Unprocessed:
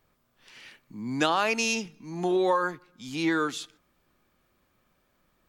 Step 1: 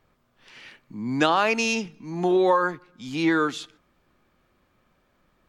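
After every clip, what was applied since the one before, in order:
low-pass filter 3,700 Hz 6 dB per octave
level +4.5 dB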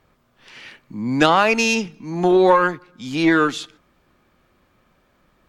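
harmonic generator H 4 −22 dB, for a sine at −7 dBFS
level +5.5 dB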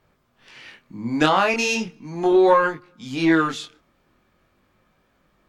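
chorus effect 0.4 Hz, delay 18.5 ms, depth 7.9 ms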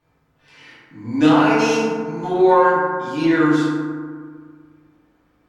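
feedback delay network reverb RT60 1.8 s, low-frequency decay 1.2×, high-frequency decay 0.35×, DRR −8.5 dB
level −8 dB

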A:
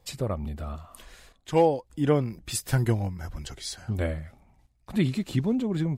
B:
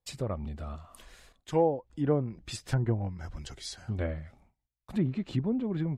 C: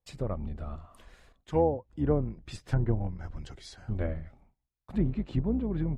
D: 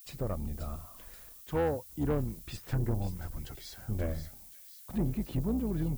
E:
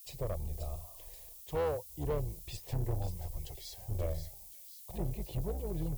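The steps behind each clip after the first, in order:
treble cut that deepens with the level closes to 990 Hz, closed at −19.5 dBFS; noise gate with hold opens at −48 dBFS; level −4 dB
sub-octave generator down 2 octaves, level −4 dB; high-shelf EQ 3,100 Hz −11 dB
background noise violet −53 dBFS; soft clipping −24 dBFS, distortion −12 dB; delay with a high-pass on its return 532 ms, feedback 53%, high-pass 3,800 Hz, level −7 dB
phaser with its sweep stopped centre 590 Hz, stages 4; asymmetric clip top −33 dBFS; level +1 dB

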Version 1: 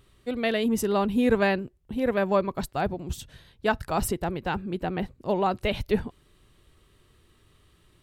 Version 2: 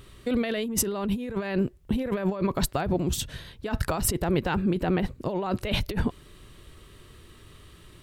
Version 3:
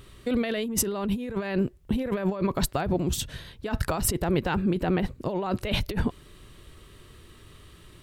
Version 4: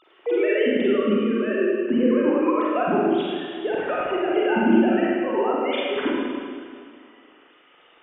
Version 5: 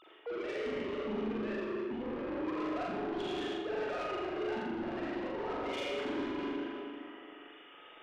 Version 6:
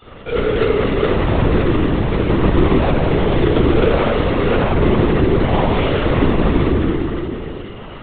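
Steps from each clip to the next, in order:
parametric band 790 Hz −3.5 dB 0.3 octaves; compressor whose output falls as the input rises −32 dBFS, ratio −1; level +5 dB
no processing that can be heard
three sine waves on the formant tracks; convolution reverb RT60 2.1 s, pre-delay 35 ms, DRR −5.5 dB
reversed playback; downward compressor 5 to 1, threshold −29 dBFS, peak gain reduction 15 dB; reversed playback; soft clipping −34 dBFS, distortion −9 dB; flutter between parallel walls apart 7.2 metres, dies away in 0.52 s; level −1.5 dB
each half-wave held at its own peak; feedback delay network reverb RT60 1 s, low-frequency decay 1.5×, high-frequency decay 0.7×, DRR −8 dB; linear-prediction vocoder at 8 kHz whisper; level +7 dB

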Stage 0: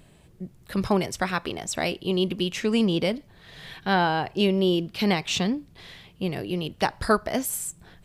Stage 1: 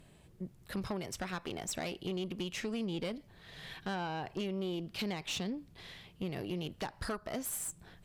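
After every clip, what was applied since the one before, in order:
downward compressor 6 to 1, threshold −27 dBFS, peak gain reduction 11.5 dB
tube saturation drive 26 dB, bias 0.4
level −4 dB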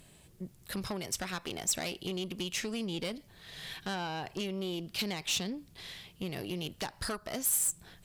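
high-shelf EQ 3,300 Hz +11 dB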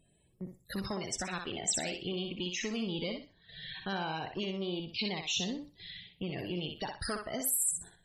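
spectral peaks only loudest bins 64
noise gate −50 dBFS, range −10 dB
feedback echo with a high-pass in the loop 62 ms, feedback 26%, high-pass 360 Hz, level −4.5 dB

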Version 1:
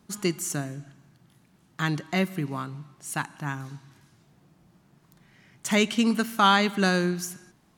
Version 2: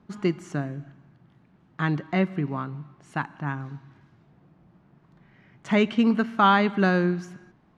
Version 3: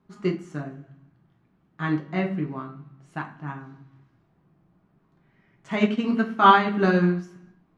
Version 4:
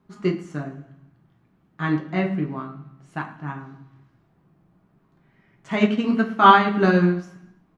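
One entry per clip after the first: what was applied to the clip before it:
Bessel low-pass filter 1,800 Hz, order 2; level +2.5 dB
rectangular room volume 50 cubic metres, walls mixed, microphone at 0.59 metres; expander for the loud parts 1.5 to 1, over −29 dBFS
repeating echo 110 ms, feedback 36%, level −18.5 dB; level +2.5 dB

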